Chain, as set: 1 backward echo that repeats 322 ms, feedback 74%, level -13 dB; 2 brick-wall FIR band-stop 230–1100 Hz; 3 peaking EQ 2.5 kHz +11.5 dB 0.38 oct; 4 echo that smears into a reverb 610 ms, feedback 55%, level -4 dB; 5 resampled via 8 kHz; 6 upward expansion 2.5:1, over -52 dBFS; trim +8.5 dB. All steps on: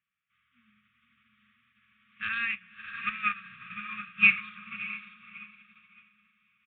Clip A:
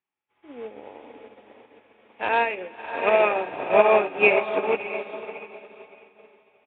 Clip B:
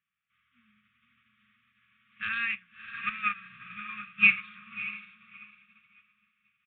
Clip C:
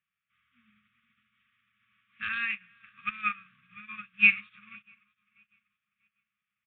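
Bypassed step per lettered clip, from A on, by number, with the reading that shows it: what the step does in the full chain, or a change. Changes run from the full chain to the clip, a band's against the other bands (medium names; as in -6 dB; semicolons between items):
2, 1 kHz band +12.5 dB; 1, momentary loudness spread change -3 LU; 4, momentary loudness spread change -2 LU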